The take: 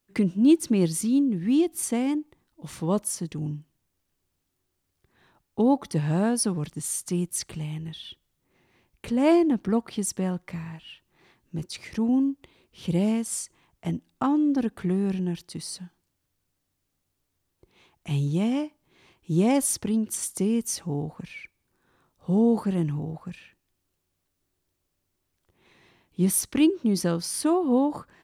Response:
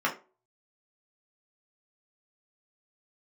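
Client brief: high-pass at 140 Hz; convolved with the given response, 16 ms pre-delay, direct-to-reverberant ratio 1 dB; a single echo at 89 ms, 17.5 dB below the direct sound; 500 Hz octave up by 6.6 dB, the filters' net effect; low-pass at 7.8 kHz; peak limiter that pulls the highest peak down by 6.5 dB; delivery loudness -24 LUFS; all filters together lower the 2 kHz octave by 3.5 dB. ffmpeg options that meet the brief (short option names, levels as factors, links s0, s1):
-filter_complex "[0:a]highpass=140,lowpass=7800,equalizer=f=500:t=o:g=9,equalizer=f=2000:t=o:g=-5,alimiter=limit=0.237:level=0:latency=1,aecho=1:1:89:0.133,asplit=2[s0][s1];[1:a]atrim=start_sample=2205,adelay=16[s2];[s1][s2]afir=irnorm=-1:irlink=0,volume=0.237[s3];[s0][s3]amix=inputs=2:normalize=0,volume=0.841"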